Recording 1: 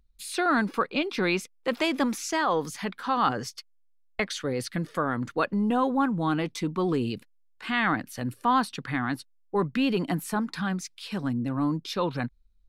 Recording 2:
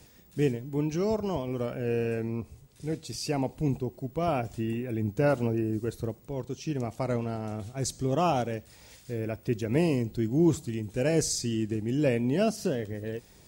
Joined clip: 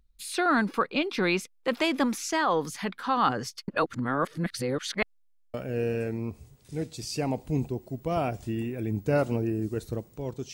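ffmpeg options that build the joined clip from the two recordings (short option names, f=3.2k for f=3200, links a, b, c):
-filter_complex "[0:a]apad=whole_dur=10.53,atrim=end=10.53,asplit=2[a][b];[a]atrim=end=3.682[c];[b]atrim=start=3.678:end=5.542,asetpts=PTS-STARTPTS,areverse[d];[1:a]atrim=start=1.648:end=6.64[e];[c][d]acrossfade=d=0.004:c1=hsin:c2=hsin[f];[f][e]acrossfade=d=0.004:c1=hsin:c2=hsin"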